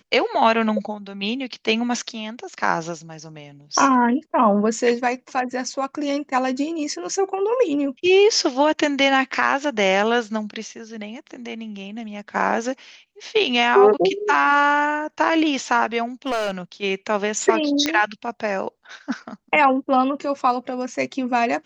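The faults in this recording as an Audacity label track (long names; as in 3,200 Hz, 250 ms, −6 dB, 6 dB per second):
16.260000	16.520000	clipping −18.5 dBFS
17.860000	17.860000	click −6 dBFS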